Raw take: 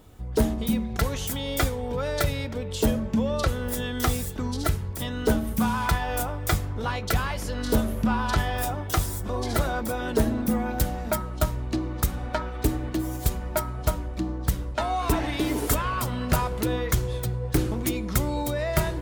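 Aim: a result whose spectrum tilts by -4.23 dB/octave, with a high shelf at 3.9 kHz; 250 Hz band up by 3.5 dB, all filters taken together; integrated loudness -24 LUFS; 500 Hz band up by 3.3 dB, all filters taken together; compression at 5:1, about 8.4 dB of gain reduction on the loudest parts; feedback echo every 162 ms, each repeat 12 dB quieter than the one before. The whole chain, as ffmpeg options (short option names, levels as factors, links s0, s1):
-af "equalizer=f=250:t=o:g=3.5,equalizer=f=500:t=o:g=3,highshelf=f=3900:g=7,acompressor=threshold=0.0562:ratio=5,aecho=1:1:162|324|486:0.251|0.0628|0.0157,volume=1.78"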